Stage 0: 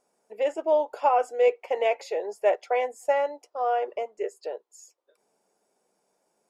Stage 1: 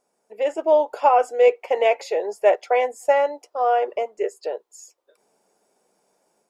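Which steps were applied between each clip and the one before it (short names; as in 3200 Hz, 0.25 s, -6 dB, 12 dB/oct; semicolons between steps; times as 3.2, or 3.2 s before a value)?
AGC gain up to 6 dB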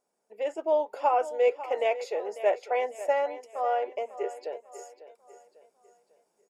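feedback echo 0.547 s, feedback 41%, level -14.5 dB; gain -8 dB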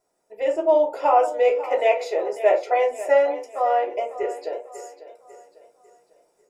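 reverb RT60 0.30 s, pre-delay 3 ms, DRR 0 dB; gain +1.5 dB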